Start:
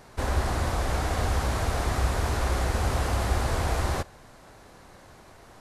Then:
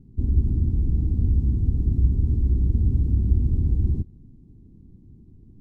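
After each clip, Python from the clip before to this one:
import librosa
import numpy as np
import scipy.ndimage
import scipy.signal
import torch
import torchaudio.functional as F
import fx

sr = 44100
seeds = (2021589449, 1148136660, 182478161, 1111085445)

y = scipy.signal.sosfilt(scipy.signal.cheby2(4, 40, 560.0, 'lowpass', fs=sr, output='sos'), x)
y = y * librosa.db_to_amplitude(7.0)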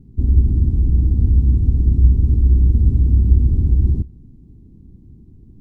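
y = fx.peak_eq(x, sr, hz=61.0, db=5.5, octaves=0.23)
y = y * librosa.db_to_amplitude(4.5)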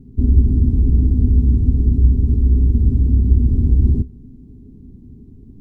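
y = fx.rider(x, sr, range_db=10, speed_s=0.5)
y = fx.small_body(y, sr, hz=(250.0, 410.0), ring_ms=100, db=10)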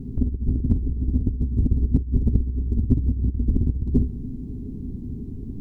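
y = fx.over_compress(x, sr, threshold_db=-19.0, ratio=-0.5)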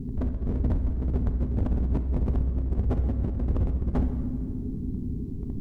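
y = np.clip(x, -10.0 ** (-22.5 / 20.0), 10.0 ** (-22.5 / 20.0))
y = fx.rev_plate(y, sr, seeds[0], rt60_s=2.0, hf_ratio=0.8, predelay_ms=0, drr_db=7.0)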